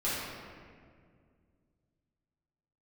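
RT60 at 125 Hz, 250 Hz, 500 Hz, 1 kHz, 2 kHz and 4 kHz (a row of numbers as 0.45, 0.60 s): 3.2, 2.9, 2.3, 1.8, 1.7, 1.2 s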